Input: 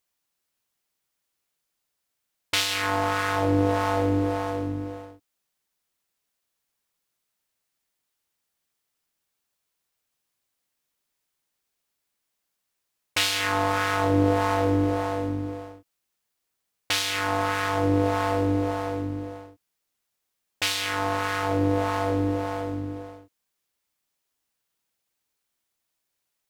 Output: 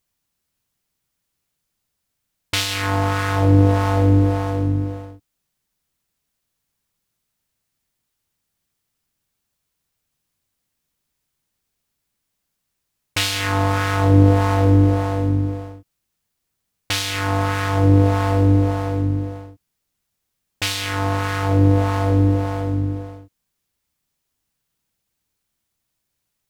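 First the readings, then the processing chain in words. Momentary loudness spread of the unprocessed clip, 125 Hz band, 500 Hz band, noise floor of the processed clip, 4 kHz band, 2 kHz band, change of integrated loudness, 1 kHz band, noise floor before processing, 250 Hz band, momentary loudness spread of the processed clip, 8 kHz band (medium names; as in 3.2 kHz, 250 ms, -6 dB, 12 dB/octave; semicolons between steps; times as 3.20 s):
11 LU, +13.5 dB, +3.0 dB, -77 dBFS, +2.5 dB, +2.0 dB, +6.5 dB, +2.0 dB, -80 dBFS, +6.5 dB, 11 LU, +3.0 dB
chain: tone controls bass +12 dB, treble +1 dB; trim +2 dB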